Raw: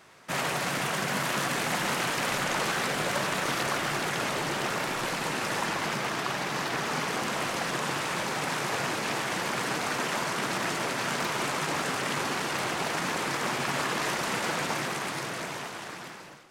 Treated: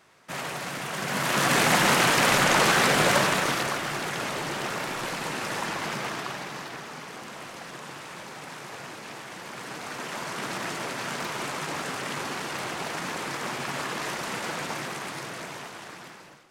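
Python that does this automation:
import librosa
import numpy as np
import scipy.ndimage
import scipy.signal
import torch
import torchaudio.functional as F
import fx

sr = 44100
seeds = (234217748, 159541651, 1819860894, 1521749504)

y = fx.gain(x, sr, db=fx.line((0.86, -4.0), (1.56, 8.0), (3.12, 8.0), (3.81, -1.0), (6.07, -1.0), (6.95, -10.0), (9.38, -10.0), (10.46, -2.5)))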